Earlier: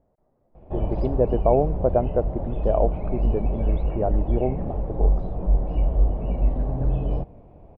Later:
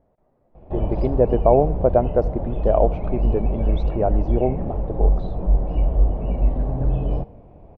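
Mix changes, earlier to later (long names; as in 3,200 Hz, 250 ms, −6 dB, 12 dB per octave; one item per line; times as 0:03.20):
speech: remove high-frequency loss of the air 430 metres
reverb: on, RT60 0.30 s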